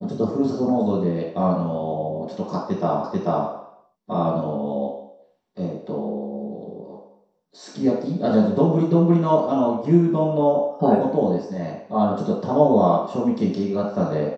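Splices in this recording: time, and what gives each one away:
3.04 repeat of the last 0.44 s

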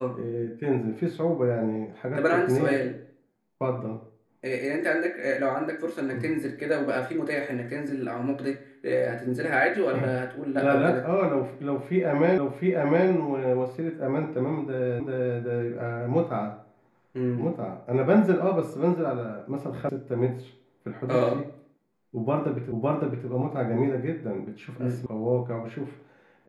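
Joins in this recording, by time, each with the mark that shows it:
12.38 repeat of the last 0.71 s
15 repeat of the last 0.39 s
19.89 sound cut off
22.72 repeat of the last 0.56 s
25.06 sound cut off

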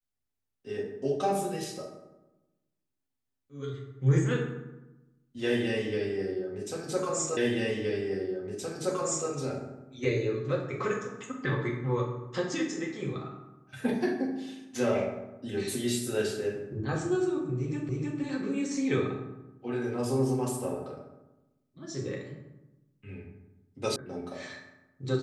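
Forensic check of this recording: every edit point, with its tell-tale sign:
7.37 repeat of the last 1.92 s
17.89 repeat of the last 0.31 s
23.96 sound cut off

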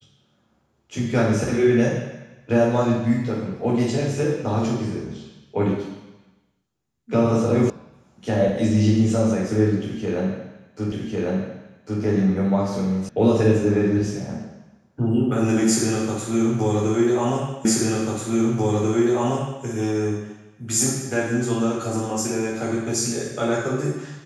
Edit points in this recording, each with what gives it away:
7.7 sound cut off
10.92 repeat of the last 1.1 s
13.09 sound cut off
17.65 repeat of the last 1.99 s

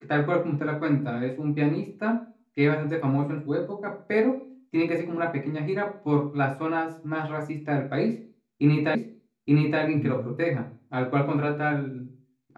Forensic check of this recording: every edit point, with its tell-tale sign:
8.95 repeat of the last 0.87 s

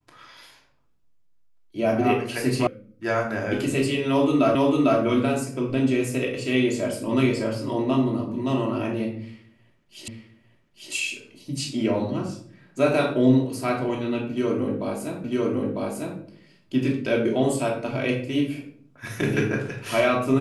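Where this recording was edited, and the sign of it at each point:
2.67 sound cut off
4.55 repeat of the last 0.45 s
10.08 repeat of the last 0.85 s
15.24 repeat of the last 0.95 s

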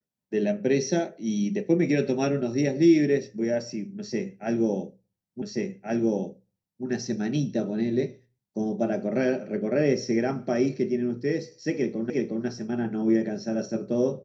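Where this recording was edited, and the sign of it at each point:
5.42 repeat of the last 1.43 s
12.1 repeat of the last 0.36 s

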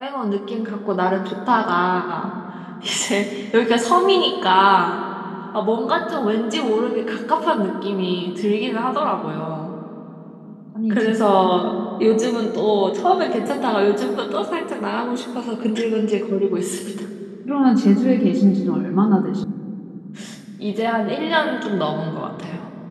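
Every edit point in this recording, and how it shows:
19.44 sound cut off

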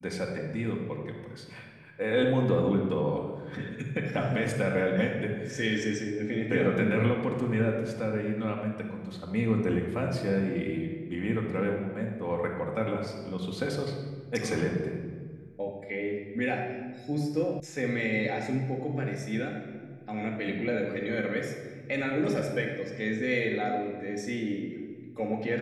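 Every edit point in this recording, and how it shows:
17.6 sound cut off

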